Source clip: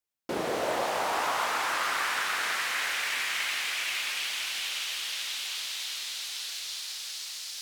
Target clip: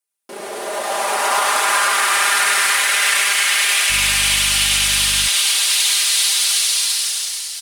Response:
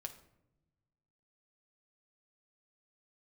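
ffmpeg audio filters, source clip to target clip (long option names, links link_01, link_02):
-filter_complex "[0:a]alimiter=level_in=2dB:limit=-24dB:level=0:latency=1:release=45,volume=-2dB,highpass=300,equalizer=frequency=9500:width=1.9:gain=12,aecho=1:1:5:0.79,asplit=2[link_01][link_02];[link_02]aecho=0:1:67.06|105:0.355|0.794[link_03];[link_01][link_03]amix=inputs=2:normalize=0,asettb=1/sr,asplit=3[link_04][link_05][link_06];[link_04]atrim=end=3.904[link_07];[link_05]atrim=start=3.9:end=5.28,asetpts=PTS-STARTPTS,afade=type=in:duration=0.004:curve=qsin,afade=type=out:start_time=1.376:duration=0.004:curve=qsin,aeval=exprs='val(0)+0.00708*(sin(2*PI*50*n/s)+sin(2*PI*2*50*n/s)/2+sin(2*PI*3*50*n/s)/3+sin(2*PI*4*50*n/s)/4+sin(2*PI*5*50*n/s)/5)':channel_layout=same[link_08];[link_06]atrim=start=5.276[link_09];[link_07][link_08]acrossfade=duration=0.004:curve1=hsin:curve2=qsin[link_10];[link_10][link_09]acrossfade=duration=0.004:curve1=qsin:curve2=hsin,dynaudnorm=framelen=220:gausssize=9:maxgain=14.5dB"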